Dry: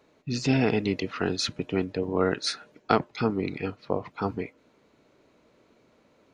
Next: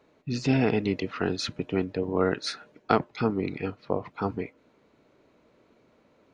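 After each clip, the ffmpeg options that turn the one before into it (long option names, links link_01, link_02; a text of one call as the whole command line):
ffmpeg -i in.wav -af "highshelf=frequency=4600:gain=-7.5" out.wav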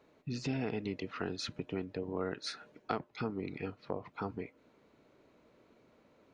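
ffmpeg -i in.wav -af "acompressor=threshold=-36dB:ratio=2,volume=-3dB" out.wav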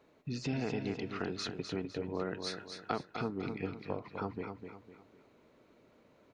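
ffmpeg -i in.wav -af "aecho=1:1:253|506|759|1012:0.447|0.165|0.0612|0.0226" out.wav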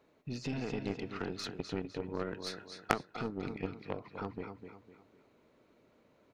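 ffmpeg -i in.wav -af "aeval=exprs='0.15*(cos(1*acos(clip(val(0)/0.15,-1,1)))-cos(1*PI/2))+0.0376*(cos(3*acos(clip(val(0)/0.15,-1,1)))-cos(3*PI/2))+0.00531*(cos(4*acos(clip(val(0)/0.15,-1,1)))-cos(4*PI/2))+0.0211*(cos(6*acos(clip(val(0)/0.15,-1,1)))-cos(6*PI/2))+0.00944*(cos(8*acos(clip(val(0)/0.15,-1,1)))-cos(8*PI/2))':channel_layout=same,volume=9.5dB" out.wav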